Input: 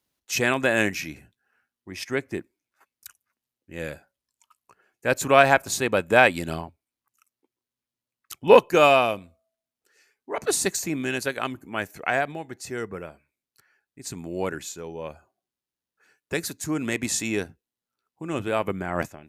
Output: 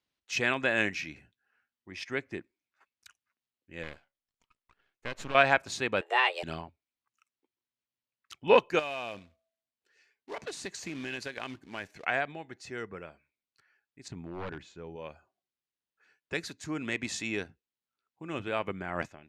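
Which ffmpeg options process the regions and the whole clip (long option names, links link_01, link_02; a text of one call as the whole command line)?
ffmpeg -i in.wav -filter_complex "[0:a]asettb=1/sr,asplit=3[link_01][link_02][link_03];[link_01]atrim=end=3.834[link_04];[link_02]atrim=start=3.83:end=5.35,asetpts=PTS-STARTPTS,afade=type=in:duration=0.004:curve=qsin,afade=type=out:start_time=1.516:duration=0.004:curve=qsin,acompressor=threshold=-22dB:ratio=6:attack=3.2:release=140:knee=1:detection=peak,aeval=exprs='max(val(0),0)':channel_layout=same[link_05];[link_03]atrim=start=5.346[link_06];[link_04][link_05]acrossfade=duration=0.004:curve1=hsin:curve2=qsin[link_07];[link_07][link_06]acrossfade=duration=0.004:curve1=qsin:curve2=hsin,asettb=1/sr,asplit=3[link_08][link_09][link_10];[link_08]atrim=end=6.014[link_11];[link_09]atrim=start=6.01:end=6.43,asetpts=PTS-STARTPTS,afade=type=in:duration=0.004:curve=qsin,afade=type=out:start_time=0.416:duration=0.004:curve=qsin,acompressor=threshold=-23dB:ratio=1.5:attack=3.2:release=140:knee=1:detection=peak,afreqshift=260,asplit=2[link_12][link_13];[link_13]adelay=13,volume=-5dB[link_14];[link_12][link_14]amix=inputs=2:normalize=0,atrim=end_sample=18522[link_15];[link_10]atrim=start=6.426[link_16];[link_11][link_15]acrossfade=duration=0.004:curve1=hsin:curve2=qsin[link_17];[link_17][link_16]acrossfade=duration=0.004:curve1=qsin:curve2=hsin,asettb=1/sr,asplit=3[link_18][link_19][link_20];[link_18]atrim=end=8.794[link_21];[link_19]atrim=start=8.79:end=12.05,asetpts=PTS-STARTPTS,afade=type=in:duration=0.004:curve=qsin,afade=type=out:start_time=3.256:duration=0.004:curve=qsin,bandreject=frequency=1300:width=8.4,acompressor=threshold=-26dB:ratio=8:attack=3.2:release=140:knee=1:detection=peak,acrusher=bits=3:mode=log:mix=0:aa=0.000001[link_22];[link_20]atrim=start=12.046[link_23];[link_21][link_22]acrossfade=duration=0.004:curve1=hsin:curve2=qsin[link_24];[link_24][link_23]acrossfade=duration=0.004:curve1=qsin:curve2=hsin,asettb=1/sr,asplit=3[link_25][link_26][link_27];[link_25]atrim=end=14.084[link_28];[link_26]atrim=start=14.08:end=14.96,asetpts=PTS-STARTPTS,afade=type=in:duration=0.004:curve=qsin,afade=type=out:start_time=0.876:duration=0.004:curve=qsin,lowshelf=frequency=150:gain=8,aeval=exprs='0.0668*(abs(mod(val(0)/0.0668+3,4)-2)-1)':channel_layout=same,lowpass=frequency=1500:poles=1[link_29];[link_27]atrim=start=14.956[link_30];[link_28][link_29]acrossfade=duration=0.004:curve1=hsin:curve2=qsin[link_31];[link_31][link_30]acrossfade=duration=0.004:curve1=qsin:curve2=hsin,lowpass=3300,highshelf=frequency=2100:gain=11,volume=-8.5dB" out.wav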